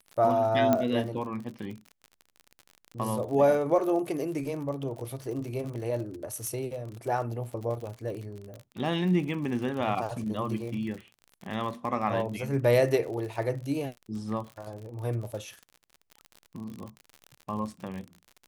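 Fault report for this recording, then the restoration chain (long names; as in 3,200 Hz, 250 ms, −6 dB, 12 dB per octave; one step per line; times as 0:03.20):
surface crackle 59 per second −36 dBFS
0:00.73: click −11 dBFS
0:06.47: click −21 dBFS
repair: click removal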